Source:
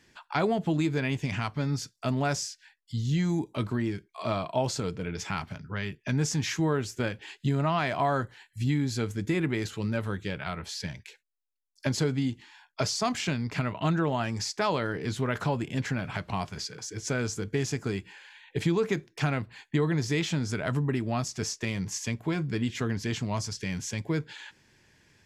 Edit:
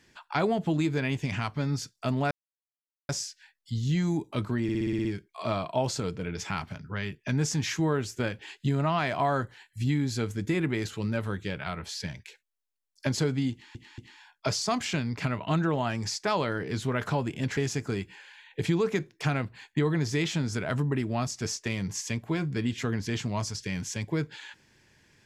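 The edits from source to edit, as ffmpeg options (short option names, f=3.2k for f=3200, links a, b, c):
-filter_complex "[0:a]asplit=12[a][b][c][d][e][f][g][h][i][j][k][l];[a]atrim=end=2.31,asetpts=PTS-STARTPTS,afade=t=out:st=2.306:d=0.004:c=hsin,apad=pad_dur=0.78[m];[b]atrim=start=2.31:end=3.912,asetpts=PTS-STARTPTS,afade=t=in:d=0.004:c=hsin[n];[c]atrim=start=3.848:end=3.912[o];[d]atrim=start=3.848:end=3.912[p];[e]atrim=start=3.848:end=3.912[q];[f]atrim=start=3.848:end=3.912[r];[g]atrim=start=3.848:end=3.912[s];[h]atrim=start=3.848:end=3.912[t];[i]atrim=start=3.848:end=12.552[u];[j]atrim=start=12.318:end=12.552[v];[k]atrim=start=12.318:end=15.912[w];[l]atrim=start=17.538[x];[m][n]concat=n=2:v=0:a=1[y];[y][o]acrossfade=d=0.004:c1=hsin:c2=hsin[z];[z][p]acrossfade=d=0.004:c1=hsin:c2=hsin[aa];[aa][q]acrossfade=d=0.004:c1=hsin:c2=hsin[ab];[ab][r]acrossfade=d=0.004:c1=hsin:c2=hsin[ac];[ac][s]acrossfade=d=0.004:c1=hsin:c2=hsin[ad];[ad][t]acrossfade=d=0.004:c1=hsin:c2=hsin[ae];[ae][u]acrossfade=d=0.004:c1=hsin:c2=hsin[af];[af][v]acrossfade=d=0.004:c1=hsin:c2=hsin[ag];[ag][w]acrossfade=d=0.004:c1=hsin:c2=hsin[ah];[ah][x]acrossfade=d=0.004:c1=hsin:c2=hsin"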